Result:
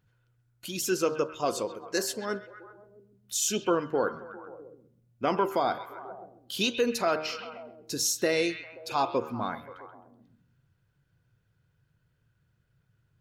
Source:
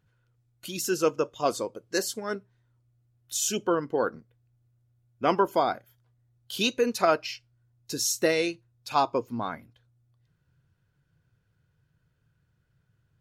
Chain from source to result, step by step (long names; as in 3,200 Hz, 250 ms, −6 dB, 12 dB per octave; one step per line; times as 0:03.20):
hum removal 77.75 Hz, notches 23
brickwall limiter −15.5 dBFS, peak gain reduction 6.5 dB
echo through a band-pass that steps 132 ms, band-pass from 2,700 Hz, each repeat −0.7 octaves, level −8.5 dB
Nellymoser 88 kbit/s 44,100 Hz